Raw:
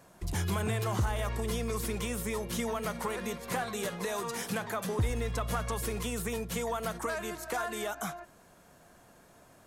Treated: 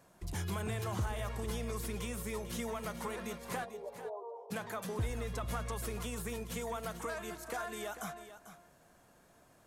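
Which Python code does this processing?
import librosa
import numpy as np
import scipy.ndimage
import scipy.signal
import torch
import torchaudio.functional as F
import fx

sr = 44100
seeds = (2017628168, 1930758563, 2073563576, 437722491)

p1 = fx.ellip_bandpass(x, sr, low_hz=420.0, high_hz=950.0, order=3, stop_db=40, at=(3.64, 4.5), fade=0.02)
p2 = p1 + fx.echo_single(p1, sr, ms=444, db=-12.0, dry=0)
y = p2 * 10.0 ** (-6.0 / 20.0)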